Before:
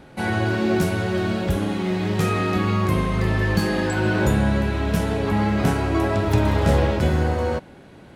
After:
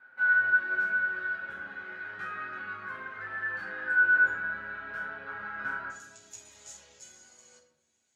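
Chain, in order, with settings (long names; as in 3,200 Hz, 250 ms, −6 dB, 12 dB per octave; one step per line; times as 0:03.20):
resonant band-pass 1,500 Hz, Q 12, from 0:05.90 6,800 Hz
reverb reduction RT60 0.59 s
convolution reverb RT60 1.0 s, pre-delay 7 ms, DRR −4.5 dB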